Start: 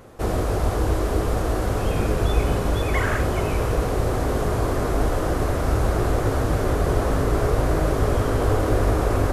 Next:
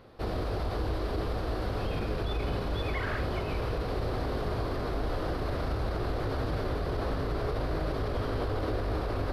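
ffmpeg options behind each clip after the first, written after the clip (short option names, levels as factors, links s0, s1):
-af "alimiter=limit=0.178:level=0:latency=1:release=25,highshelf=f=5600:t=q:w=3:g=-8,volume=0.398"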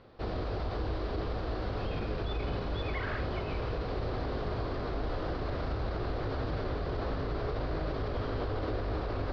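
-af "lowpass=f=5300:w=0.5412,lowpass=f=5300:w=1.3066,volume=0.75"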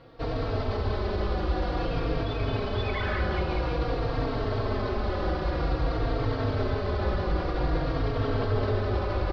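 -filter_complex "[0:a]asplit=2[s0][s1];[s1]aecho=0:1:192:0.531[s2];[s0][s2]amix=inputs=2:normalize=0,asplit=2[s3][s4];[s4]adelay=3.8,afreqshift=-0.51[s5];[s3][s5]amix=inputs=2:normalize=1,volume=2.51"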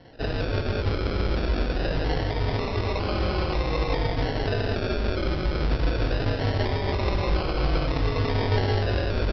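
-filter_complex "[0:a]aresample=11025,acrusher=samples=9:mix=1:aa=0.000001:lfo=1:lforange=5.4:lforate=0.23,aresample=44100,asplit=2[s0][s1];[s1]adelay=21,volume=0.299[s2];[s0][s2]amix=inputs=2:normalize=0,volume=1.26"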